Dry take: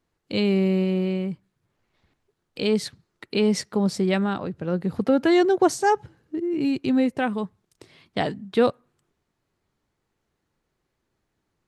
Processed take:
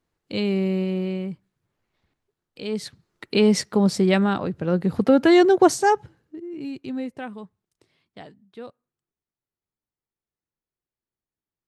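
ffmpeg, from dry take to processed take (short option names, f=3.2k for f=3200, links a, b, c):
-af "volume=10dB,afade=t=out:st=1.28:d=1.36:silence=0.473151,afade=t=in:st=2.64:d=0.72:silence=0.251189,afade=t=out:st=5.72:d=0.64:silence=0.237137,afade=t=out:st=7.12:d=1.25:silence=0.298538"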